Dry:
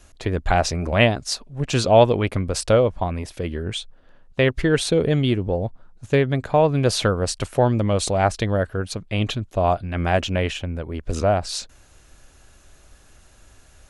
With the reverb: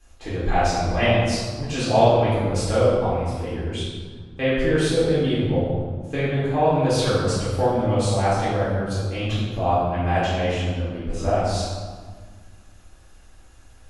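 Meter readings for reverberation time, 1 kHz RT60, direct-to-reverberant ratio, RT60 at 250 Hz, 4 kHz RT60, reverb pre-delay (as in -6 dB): 1.6 s, 1.7 s, -10.5 dB, 2.3 s, 1.0 s, 3 ms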